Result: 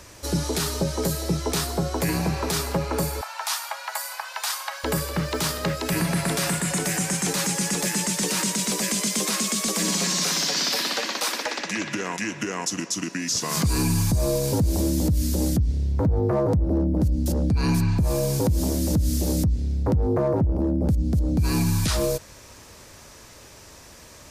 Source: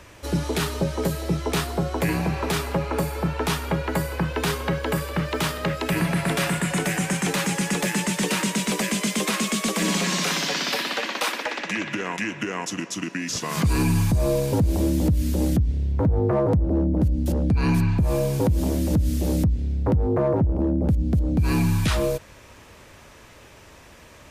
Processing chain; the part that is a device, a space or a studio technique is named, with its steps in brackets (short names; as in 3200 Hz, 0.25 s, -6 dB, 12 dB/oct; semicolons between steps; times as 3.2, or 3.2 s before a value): over-bright horn tweeter (resonant high shelf 3800 Hz +6.5 dB, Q 1.5; limiter -14.5 dBFS, peak gain reduction 6 dB); 3.21–4.84 steep high-pass 690 Hz 48 dB/oct